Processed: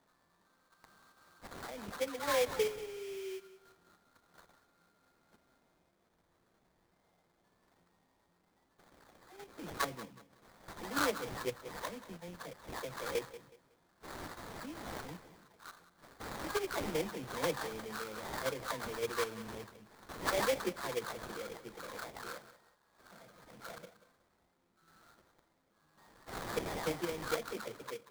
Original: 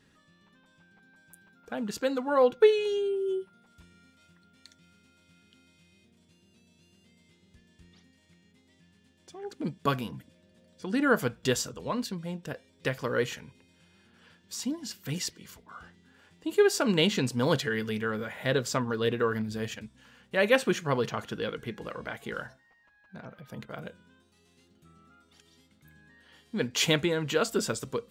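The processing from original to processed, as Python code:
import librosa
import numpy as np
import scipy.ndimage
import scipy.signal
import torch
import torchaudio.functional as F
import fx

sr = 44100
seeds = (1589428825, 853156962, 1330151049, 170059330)

p1 = fx.spec_delay(x, sr, highs='early', ms=492)
p2 = fx.env_lowpass_down(p1, sr, base_hz=2400.0, full_db=-25.0)
p3 = fx.highpass(p2, sr, hz=200.0, slope=6)
p4 = fx.low_shelf(p3, sr, hz=440.0, db=-10.0)
p5 = fx.level_steps(p4, sr, step_db=16)
p6 = p4 + (p5 * 10.0 ** (2.0 / 20.0))
p7 = fx.sample_hold(p6, sr, seeds[0], rate_hz=2800.0, jitter_pct=20)
p8 = fx.echo_feedback(p7, sr, ms=185, feedback_pct=29, wet_db=-15.5)
y = p8 * 10.0 ** (-7.5 / 20.0)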